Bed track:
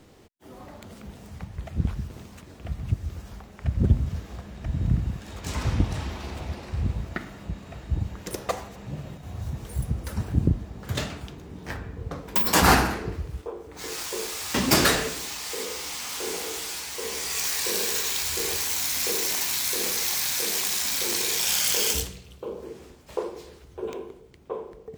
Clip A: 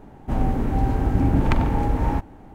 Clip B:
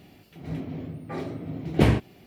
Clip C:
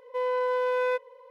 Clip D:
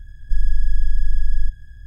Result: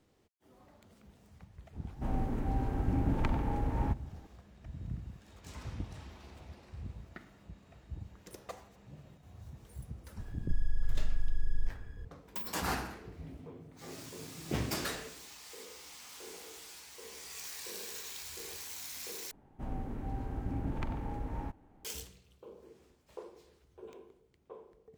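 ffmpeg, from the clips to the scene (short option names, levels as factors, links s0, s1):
-filter_complex "[1:a]asplit=2[s0][s1];[0:a]volume=0.141[s2];[4:a]acompressor=threshold=0.178:ratio=6:attack=3.2:release=140:knee=1:detection=peak[s3];[s2]asplit=2[s4][s5];[s4]atrim=end=19.314[s6];[s1]atrim=end=2.54,asetpts=PTS-STARTPTS,volume=0.141[s7];[s5]atrim=start=21.846[s8];[s0]atrim=end=2.54,asetpts=PTS-STARTPTS,volume=0.266,afade=t=in:d=0.004:c=hsin,afade=t=out:st=2.536:d=0.004:c=hsin,adelay=1730[s9];[s3]atrim=end=1.86,asetpts=PTS-STARTPTS,volume=0.447,afade=t=in:d=0.004:c=hsin,afade=t=out:st=1.856:d=0.004:c=hsin,adelay=10190[s10];[2:a]atrim=end=2.26,asetpts=PTS-STARTPTS,volume=0.158,afade=t=in:d=0.004:c=hsin,afade=t=out:st=2.256:d=0.004:c=hsin,adelay=12720[s11];[s6][s7]acrossfade=d=0.004:c1=hsin:c2=hsin[s12];[s12][s8]acrossfade=d=0.004:c1=hsin:c2=hsin[s13];[s13][s9][s10][s11]amix=inputs=4:normalize=0"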